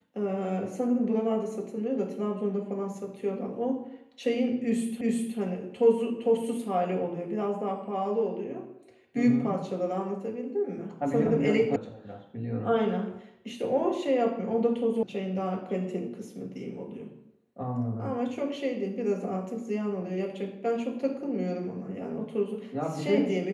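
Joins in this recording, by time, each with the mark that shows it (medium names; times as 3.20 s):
5.01 s: repeat of the last 0.37 s
11.76 s: sound stops dead
15.03 s: sound stops dead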